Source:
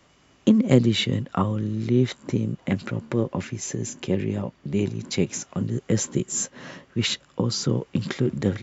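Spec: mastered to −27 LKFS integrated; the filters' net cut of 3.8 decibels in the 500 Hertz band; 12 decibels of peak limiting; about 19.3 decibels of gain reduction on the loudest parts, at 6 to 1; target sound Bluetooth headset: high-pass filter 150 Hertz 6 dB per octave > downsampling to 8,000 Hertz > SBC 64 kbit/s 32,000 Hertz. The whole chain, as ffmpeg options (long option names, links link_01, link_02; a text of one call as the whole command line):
ffmpeg -i in.wav -af "equalizer=frequency=500:width_type=o:gain=-4.5,acompressor=threshold=-34dB:ratio=6,alimiter=level_in=6dB:limit=-24dB:level=0:latency=1,volume=-6dB,highpass=frequency=150:poles=1,aresample=8000,aresample=44100,volume=17dB" -ar 32000 -c:a sbc -b:a 64k out.sbc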